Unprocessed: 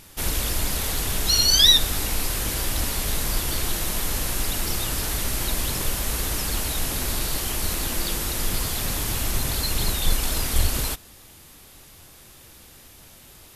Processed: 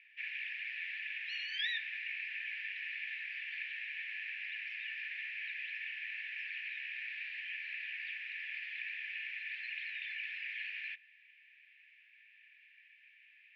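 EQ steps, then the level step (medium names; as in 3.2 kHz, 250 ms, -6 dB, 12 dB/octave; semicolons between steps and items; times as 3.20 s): rippled Chebyshev high-pass 1.7 kHz, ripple 6 dB; elliptic low-pass 2.6 kHz, stop band 80 dB; distance through air 96 m; +2.5 dB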